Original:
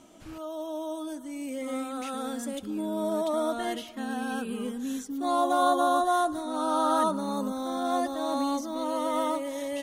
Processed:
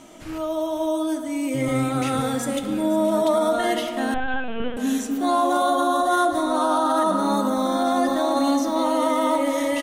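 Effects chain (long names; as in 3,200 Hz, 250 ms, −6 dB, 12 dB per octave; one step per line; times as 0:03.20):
0:01.54–0:02.20: sub-octave generator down 1 octave, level 0 dB
on a send at −6.5 dB: convolution reverb RT60 1.9 s, pre-delay 6 ms
on the sum: brickwall limiter −21 dBFS, peak gain reduction 9 dB
parametric band 2,000 Hz +4.5 dB 0.4 octaves
mains-hum notches 60/120/180/240/300/360/420/480 Hz
repeating echo 510 ms, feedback 43%, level −14.5 dB
0:04.14–0:04.77: linear-prediction vocoder at 8 kHz pitch kept
level +8.5 dB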